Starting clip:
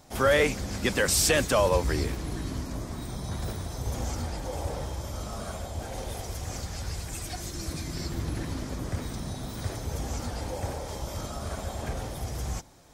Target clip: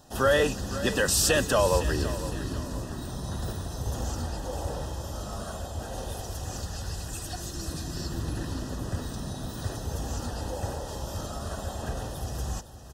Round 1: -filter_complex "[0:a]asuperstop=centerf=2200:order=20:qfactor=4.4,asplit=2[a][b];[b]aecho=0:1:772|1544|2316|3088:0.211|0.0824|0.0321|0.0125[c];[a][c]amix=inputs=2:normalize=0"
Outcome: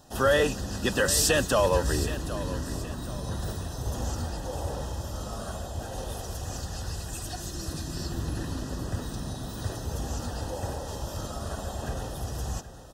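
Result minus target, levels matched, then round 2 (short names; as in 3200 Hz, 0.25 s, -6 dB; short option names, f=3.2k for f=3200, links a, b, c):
echo 0.262 s late
-filter_complex "[0:a]asuperstop=centerf=2200:order=20:qfactor=4.4,asplit=2[a][b];[b]aecho=0:1:510|1020|1530|2040:0.211|0.0824|0.0321|0.0125[c];[a][c]amix=inputs=2:normalize=0"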